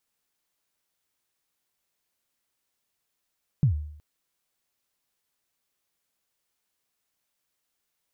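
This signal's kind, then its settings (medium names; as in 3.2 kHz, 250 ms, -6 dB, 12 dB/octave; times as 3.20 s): kick drum length 0.37 s, from 160 Hz, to 75 Hz, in 105 ms, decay 0.67 s, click off, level -14.5 dB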